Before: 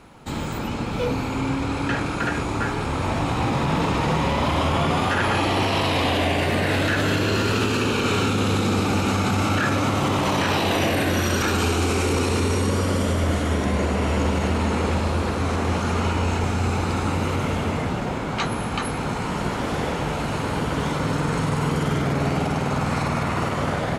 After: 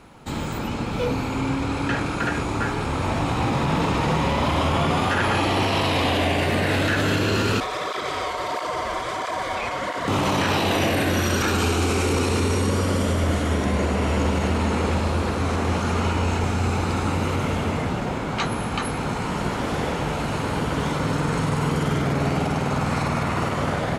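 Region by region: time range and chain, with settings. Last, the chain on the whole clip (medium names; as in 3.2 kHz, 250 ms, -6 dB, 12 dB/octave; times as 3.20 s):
7.60–10.08 s: treble shelf 11 kHz -6.5 dB + ring modulator 840 Hz + cancelling through-zero flanger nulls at 1.5 Hz, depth 8 ms
whole clip: none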